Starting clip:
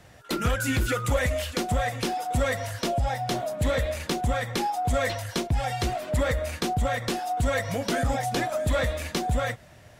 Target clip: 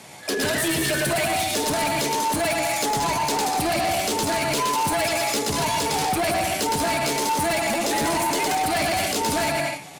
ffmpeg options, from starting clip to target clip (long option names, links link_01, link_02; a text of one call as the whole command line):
ffmpeg -i in.wav -filter_complex "[0:a]highpass=220,lowshelf=frequency=480:gain=9.5,acontrast=60,highshelf=frequency=2600:gain=12,bandreject=frequency=50:width_type=h:width=6,bandreject=frequency=100:width_type=h:width=6,bandreject=frequency=150:width_type=h:width=6,bandreject=frequency=200:width_type=h:width=6,bandreject=frequency=250:width_type=h:width=6,bandreject=frequency=300:width_type=h:width=6,bandreject=frequency=350:width_type=h:width=6,bandreject=frequency=400:width_type=h:width=6,asplit=2[link_01][link_02];[link_02]aecho=0:1:110|187|240.9|278.6|305:0.631|0.398|0.251|0.158|0.1[link_03];[link_01][link_03]amix=inputs=2:normalize=0,alimiter=limit=-8dB:level=0:latency=1:release=201,aresample=22050,aresample=44100,asplit=2[link_04][link_05];[link_05]adelay=78,lowpass=frequency=2500:poles=1,volume=-17dB,asplit=2[link_06][link_07];[link_07]adelay=78,lowpass=frequency=2500:poles=1,volume=0.43,asplit=2[link_08][link_09];[link_09]adelay=78,lowpass=frequency=2500:poles=1,volume=0.43,asplit=2[link_10][link_11];[link_11]adelay=78,lowpass=frequency=2500:poles=1,volume=0.43[link_12];[link_06][link_08][link_10][link_12]amix=inputs=4:normalize=0[link_13];[link_04][link_13]amix=inputs=2:normalize=0,asetrate=53981,aresample=44100,atempo=0.816958,volume=18.5dB,asoftclip=hard,volume=-18.5dB,volume=-1.5dB" out.wav